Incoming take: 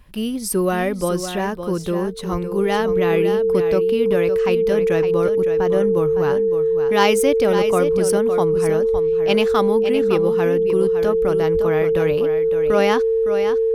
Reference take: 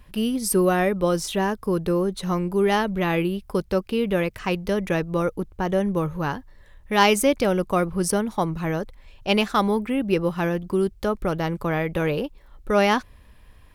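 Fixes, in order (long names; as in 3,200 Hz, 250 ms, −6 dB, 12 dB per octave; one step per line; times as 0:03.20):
notch filter 450 Hz, Q 30
0:02.31–0:02.43: high-pass filter 140 Hz 24 dB per octave
0:08.92–0:09.04: high-pass filter 140 Hz 24 dB per octave
0:11.53–0:11.65: high-pass filter 140 Hz 24 dB per octave
echo removal 561 ms −9 dB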